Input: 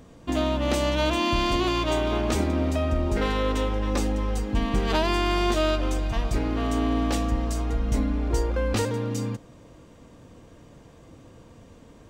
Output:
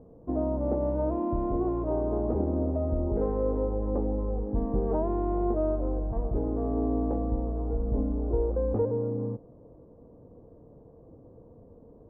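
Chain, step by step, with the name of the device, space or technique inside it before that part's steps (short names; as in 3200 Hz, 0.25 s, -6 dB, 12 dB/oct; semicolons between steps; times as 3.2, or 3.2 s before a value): under water (LPF 840 Hz 24 dB/oct; bell 450 Hz +7 dB 0.43 oct); gain -4 dB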